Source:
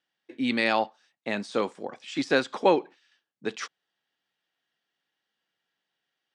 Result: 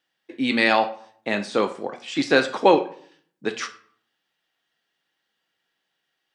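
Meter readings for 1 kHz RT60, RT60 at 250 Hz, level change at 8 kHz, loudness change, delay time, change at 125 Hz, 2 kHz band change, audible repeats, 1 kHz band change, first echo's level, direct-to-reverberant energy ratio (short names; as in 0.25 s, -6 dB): 0.55 s, 0.75 s, +5.5 dB, +5.5 dB, none, +4.5 dB, +6.5 dB, none, +6.0 dB, none, 7.0 dB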